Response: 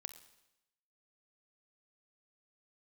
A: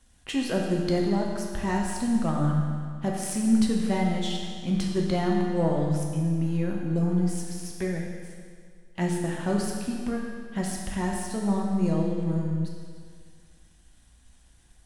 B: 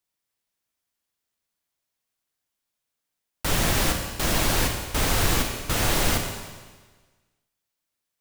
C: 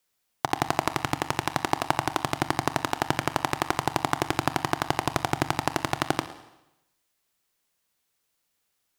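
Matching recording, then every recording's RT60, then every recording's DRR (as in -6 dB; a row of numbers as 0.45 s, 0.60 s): C; 2.0 s, 1.4 s, 0.90 s; -1.5 dB, 3.0 dB, 10.5 dB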